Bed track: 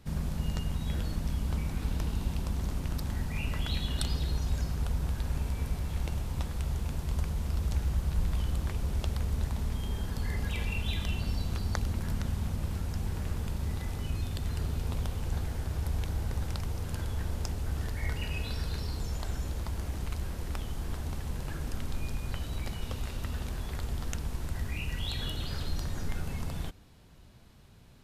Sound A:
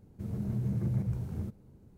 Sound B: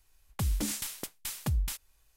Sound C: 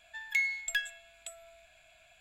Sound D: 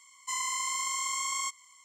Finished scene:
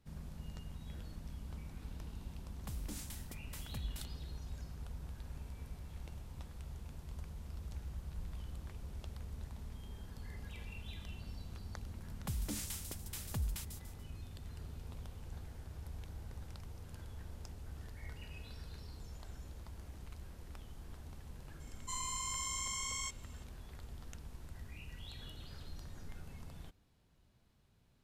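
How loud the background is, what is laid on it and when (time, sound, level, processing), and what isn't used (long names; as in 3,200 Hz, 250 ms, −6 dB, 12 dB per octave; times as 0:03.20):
bed track −15 dB
0:02.28: mix in B −14 dB
0:11.88: mix in B −8.5 dB + delay with a high-pass on its return 145 ms, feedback 36%, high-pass 4,300 Hz, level −5.5 dB
0:21.60: mix in D −9.5 dB + comb filter 2.2 ms, depth 84%
not used: A, C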